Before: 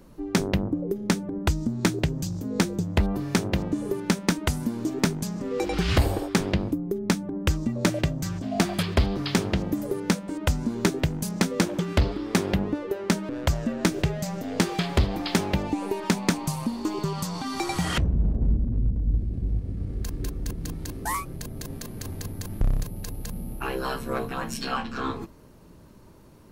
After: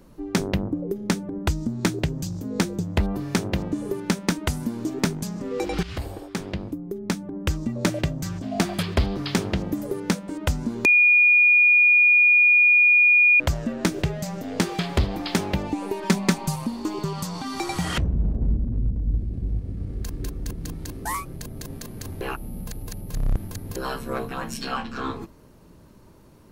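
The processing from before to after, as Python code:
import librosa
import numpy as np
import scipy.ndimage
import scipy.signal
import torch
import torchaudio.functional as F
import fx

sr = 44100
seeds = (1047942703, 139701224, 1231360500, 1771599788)

y = fx.comb(x, sr, ms=5.2, depth=0.65, at=(16.02, 16.56))
y = fx.edit(y, sr, fx.fade_in_from(start_s=5.83, length_s=1.98, floor_db=-12.5),
    fx.bleep(start_s=10.85, length_s=2.55, hz=2440.0, db=-12.5),
    fx.reverse_span(start_s=22.21, length_s=1.55), tone=tone)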